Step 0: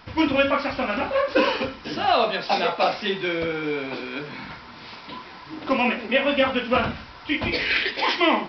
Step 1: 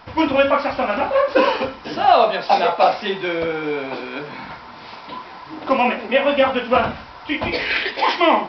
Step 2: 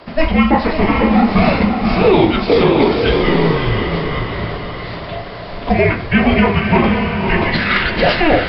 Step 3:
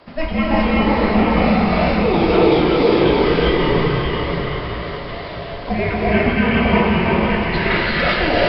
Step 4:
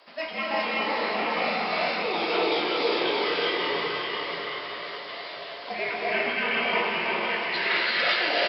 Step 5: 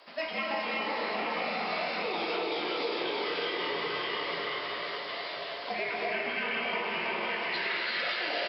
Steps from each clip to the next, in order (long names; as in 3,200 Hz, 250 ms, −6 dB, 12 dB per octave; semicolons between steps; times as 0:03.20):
parametric band 770 Hz +8 dB 1.5 octaves
feedback delay with all-pass diffusion 580 ms, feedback 44%, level −4.5 dB; frequency shifter −330 Hz; boost into a limiter +6 dB; level −1 dB
reverb whose tail is shaped and stops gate 430 ms rising, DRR −5 dB; level −8 dB
high-pass filter 470 Hz 12 dB per octave; high-shelf EQ 2,700 Hz +11.5 dB; double-tracking delay 17 ms −11.5 dB; level −9 dB
downward compressor, threshold −29 dBFS, peak gain reduction 9 dB